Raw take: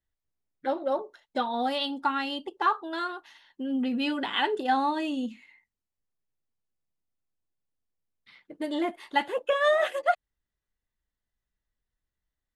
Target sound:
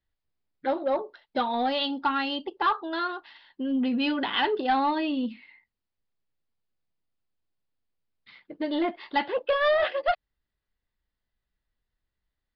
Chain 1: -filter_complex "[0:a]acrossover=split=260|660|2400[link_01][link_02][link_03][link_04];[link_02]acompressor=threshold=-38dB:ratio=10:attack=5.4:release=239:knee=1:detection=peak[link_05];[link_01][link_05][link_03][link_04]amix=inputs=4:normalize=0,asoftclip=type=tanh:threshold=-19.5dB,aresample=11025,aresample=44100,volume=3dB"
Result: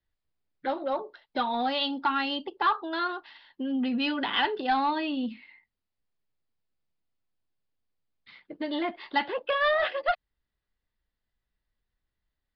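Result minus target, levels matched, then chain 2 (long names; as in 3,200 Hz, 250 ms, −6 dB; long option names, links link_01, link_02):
downward compressor: peak gain reduction +14.5 dB
-af "asoftclip=type=tanh:threshold=-19.5dB,aresample=11025,aresample=44100,volume=3dB"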